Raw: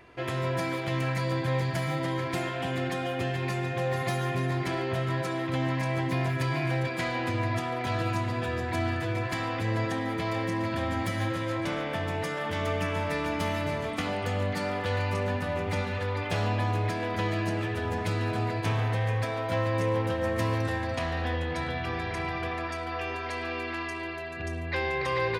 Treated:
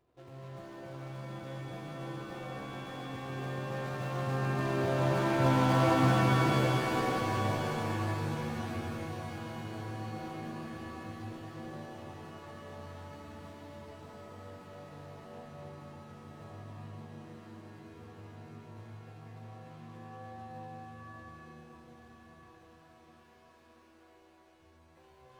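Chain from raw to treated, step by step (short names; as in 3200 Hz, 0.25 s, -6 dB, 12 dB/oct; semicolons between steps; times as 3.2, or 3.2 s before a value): median filter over 25 samples; Doppler pass-by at 5.69, 6 m/s, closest 3 m; shimmer reverb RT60 4 s, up +7 st, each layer -2 dB, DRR 1.5 dB; gain +3 dB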